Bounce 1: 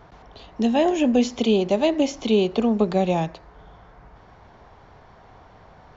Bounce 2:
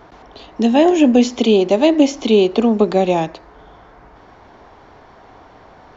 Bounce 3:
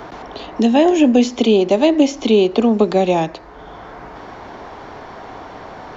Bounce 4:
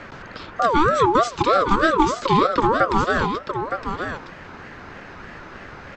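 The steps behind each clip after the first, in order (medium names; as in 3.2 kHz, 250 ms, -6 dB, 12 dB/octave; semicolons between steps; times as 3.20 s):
FFT filter 170 Hz 0 dB, 290 Hz +10 dB, 490 Hz +6 dB
three bands compressed up and down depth 40%
delay 914 ms -7.5 dB; ring modulator with a swept carrier 780 Hz, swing 25%, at 3.2 Hz; trim -2 dB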